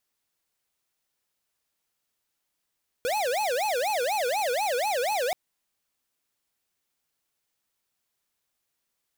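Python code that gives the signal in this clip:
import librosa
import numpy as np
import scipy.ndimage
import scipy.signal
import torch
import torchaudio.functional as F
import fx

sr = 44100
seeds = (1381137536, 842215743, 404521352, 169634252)

y = fx.siren(sr, length_s=2.28, kind='wail', low_hz=477.0, high_hz=863.0, per_s=4.1, wave='square', level_db=-26.5)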